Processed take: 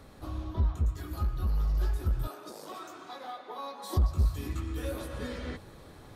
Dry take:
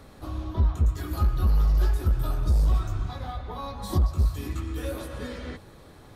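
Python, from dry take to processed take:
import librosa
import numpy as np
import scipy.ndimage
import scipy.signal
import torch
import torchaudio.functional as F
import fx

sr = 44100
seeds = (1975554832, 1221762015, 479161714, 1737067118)

y = fx.highpass(x, sr, hz=300.0, slope=24, at=(2.27, 3.97))
y = fx.rider(y, sr, range_db=5, speed_s=2.0)
y = y * librosa.db_to_amplitude(-6.0)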